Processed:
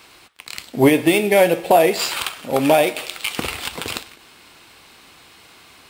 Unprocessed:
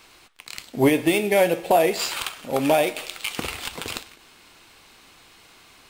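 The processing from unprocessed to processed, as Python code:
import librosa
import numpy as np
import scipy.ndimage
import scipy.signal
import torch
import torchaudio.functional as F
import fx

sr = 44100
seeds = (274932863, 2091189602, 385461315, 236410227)

y = scipy.signal.sosfilt(scipy.signal.butter(2, 48.0, 'highpass', fs=sr, output='sos'), x)
y = fx.peak_eq(y, sr, hz=6400.0, db=-3.0, octaves=0.33)
y = y * 10.0 ** (4.5 / 20.0)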